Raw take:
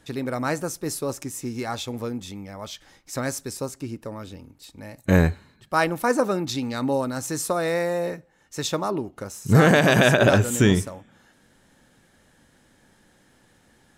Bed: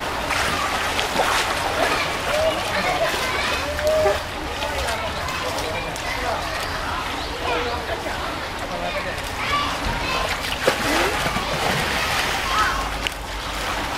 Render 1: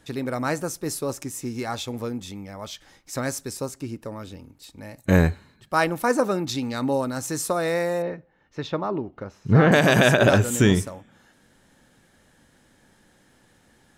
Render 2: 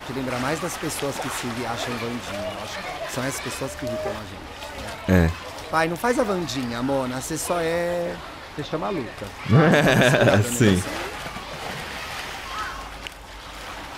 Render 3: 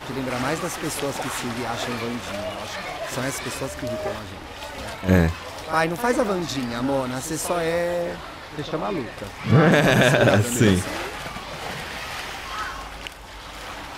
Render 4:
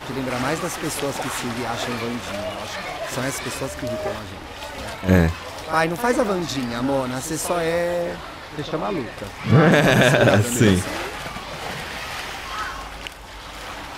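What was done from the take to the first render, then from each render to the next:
0:08.02–0:09.72: high-frequency loss of the air 290 metres
mix in bed −10.5 dB
backwards echo 54 ms −12 dB
level +1.5 dB

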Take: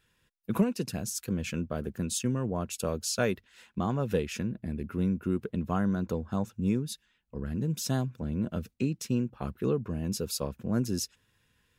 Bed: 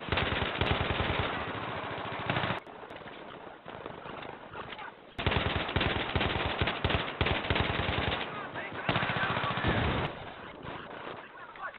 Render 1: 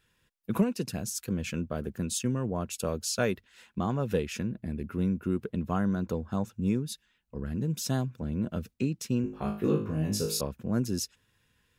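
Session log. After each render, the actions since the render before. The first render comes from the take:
0:09.22–0:10.41: flutter between parallel walls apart 3.3 metres, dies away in 0.41 s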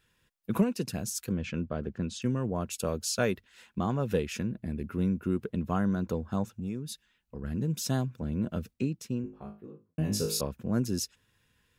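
0:01.32–0:02.22: high-frequency loss of the air 140 metres
0:06.58–0:07.44: downward compressor 2 to 1, threshold −36 dBFS
0:08.52–0:09.98: fade out and dull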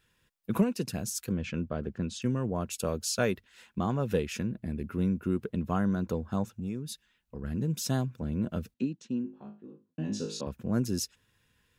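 0:08.74–0:10.47: loudspeaker in its box 210–6,000 Hz, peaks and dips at 240 Hz +5 dB, 440 Hz −6 dB, 670 Hz −7 dB, 1,200 Hz −8 dB, 2,200 Hz −9 dB, 5,100 Hz −9 dB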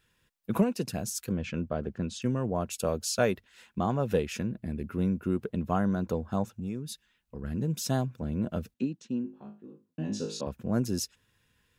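dynamic equaliser 690 Hz, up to +5 dB, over −45 dBFS, Q 1.6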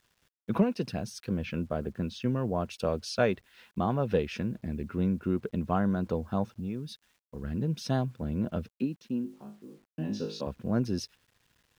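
Savitzky-Golay smoothing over 15 samples
bit reduction 11 bits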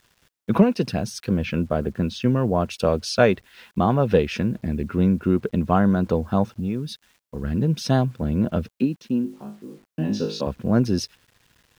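level +9 dB

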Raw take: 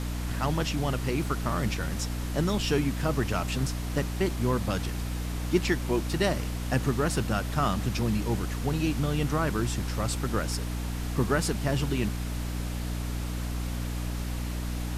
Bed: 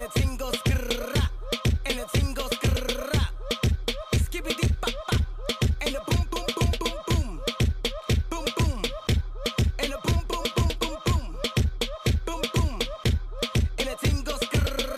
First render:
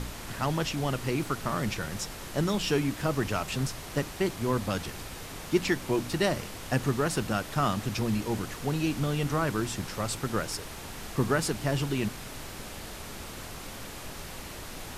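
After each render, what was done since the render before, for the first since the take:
hum removal 60 Hz, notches 5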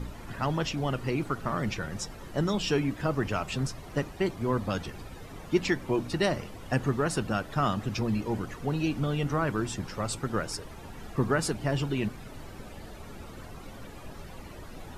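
broadband denoise 13 dB, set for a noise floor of −42 dBFS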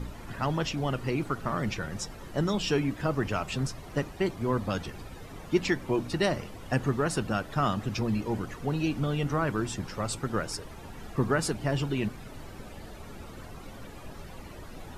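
no processing that can be heard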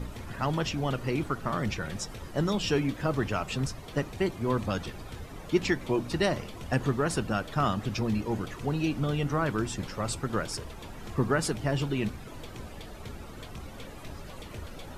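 mix in bed −21 dB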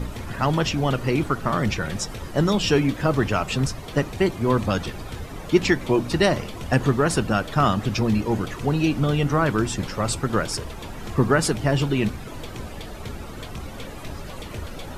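level +7.5 dB

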